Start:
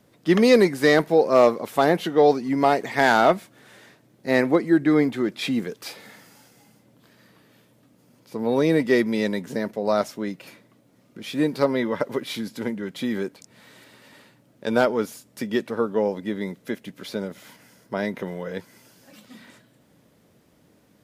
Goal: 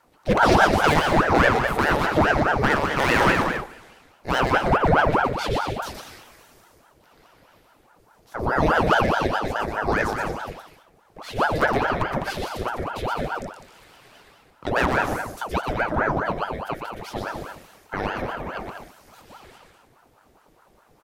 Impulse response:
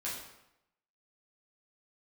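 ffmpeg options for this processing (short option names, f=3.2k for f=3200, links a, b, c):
-filter_complex "[0:a]aeval=exprs='0.299*(abs(mod(val(0)/0.299+3,4)-2)-1)':c=same,aecho=1:1:120|204|262.8|304|332.8:0.631|0.398|0.251|0.158|0.1,asplit=2[a][b];[1:a]atrim=start_sample=2205,lowpass=2.2k[c];[b][c]afir=irnorm=-1:irlink=0,volume=-9dB[d];[a][d]amix=inputs=2:normalize=0,aeval=exprs='val(0)*sin(2*PI*660*n/s+660*0.8/4.8*sin(2*PI*4.8*n/s))':c=same"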